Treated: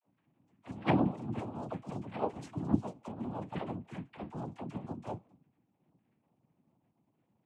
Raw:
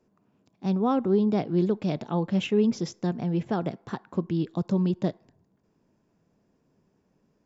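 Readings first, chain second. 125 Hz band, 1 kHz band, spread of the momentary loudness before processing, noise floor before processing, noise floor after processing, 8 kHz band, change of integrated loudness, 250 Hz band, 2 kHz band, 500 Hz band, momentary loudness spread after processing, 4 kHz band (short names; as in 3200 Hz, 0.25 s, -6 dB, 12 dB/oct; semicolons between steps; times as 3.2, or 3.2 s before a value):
-9.5 dB, -5.0 dB, 9 LU, -70 dBFS, -78 dBFS, n/a, -10.5 dB, -10.5 dB, -5.0 dB, -12.5 dB, 14 LU, -12.5 dB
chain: octave resonator B, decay 0.15 s; noise vocoder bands 4; dispersion lows, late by 45 ms, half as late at 450 Hz; gain +4.5 dB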